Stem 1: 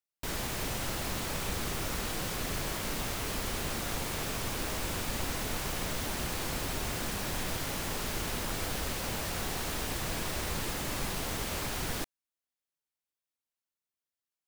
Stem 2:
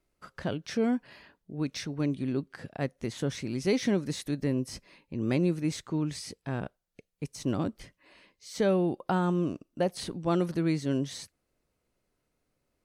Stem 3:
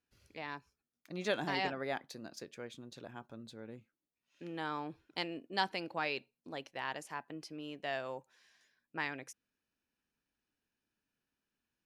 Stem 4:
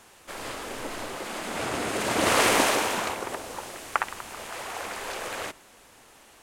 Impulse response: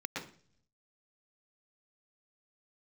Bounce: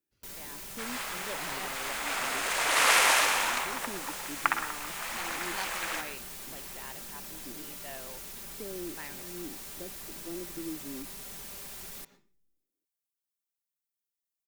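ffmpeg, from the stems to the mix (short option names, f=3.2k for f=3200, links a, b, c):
-filter_complex "[0:a]aecho=1:1:5.1:0.65,crystalizer=i=2:c=0,asoftclip=type=tanh:threshold=-30dB,volume=-11.5dB,asplit=2[a][b];[b]volume=-13dB[c];[1:a]bandpass=f=320:t=q:w=3:csg=0,volume=-9.5dB[d];[2:a]volume=-7.5dB,asplit=2[e][f];[3:a]highpass=950,adelay=500,volume=-1.5dB,asplit=2[g][h];[h]volume=-7.5dB[i];[f]apad=whole_len=566593[j];[d][j]sidechaincompress=threshold=-56dB:ratio=8:attack=16:release=226[k];[4:a]atrim=start_sample=2205[l];[c][i]amix=inputs=2:normalize=0[m];[m][l]afir=irnorm=-1:irlink=0[n];[a][k][e][g][n]amix=inputs=5:normalize=0"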